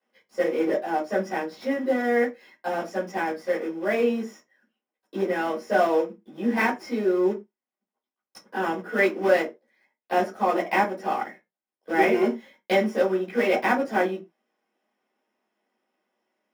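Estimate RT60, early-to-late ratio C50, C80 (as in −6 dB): non-exponential decay, 11.0 dB, 19.5 dB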